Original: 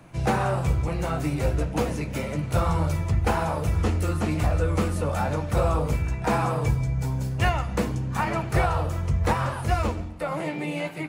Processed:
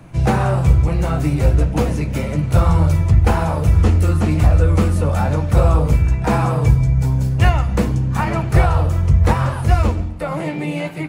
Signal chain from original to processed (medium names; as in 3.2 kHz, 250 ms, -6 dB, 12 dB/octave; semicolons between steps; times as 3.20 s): bass shelf 200 Hz +8.5 dB; trim +4 dB